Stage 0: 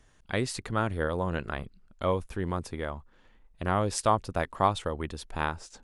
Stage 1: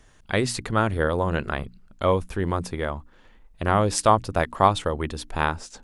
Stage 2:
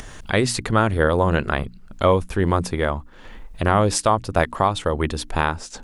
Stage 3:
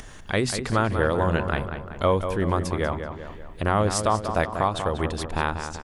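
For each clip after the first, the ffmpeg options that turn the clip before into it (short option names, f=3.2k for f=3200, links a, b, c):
-af "bandreject=f=60:t=h:w=6,bandreject=f=120:t=h:w=6,bandreject=f=180:t=h:w=6,bandreject=f=240:t=h:w=6,bandreject=f=300:t=h:w=6,volume=6.5dB"
-af "alimiter=limit=-11dB:level=0:latency=1:release=376,acompressor=mode=upward:threshold=-33dB:ratio=2.5,volume=6dB"
-filter_complex "[0:a]asplit=2[a][b];[b]adelay=191,lowpass=f=3.3k:p=1,volume=-8dB,asplit=2[c][d];[d]adelay=191,lowpass=f=3.3k:p=1,volume=0.54,asplit=2[e][f];[f]adelay=191,lowpass=f=3.3k:p=1,volume=0.54,asplit=2[g][h];[h]adelay=191,lowpass=f=3.3k:p=1,volume=0.54,asplit=2[i][j];[j]adelay=191,lowpass=f=3.3k:p=1,volume=0.54,asplit=2[k][l];[l]adelay=191,lowpass=f=3.3k:p=1,volume=0.54[m];[a][c][e][g][i][k][m]amix=inputs=7:normalize=0,volume=-4.5dB"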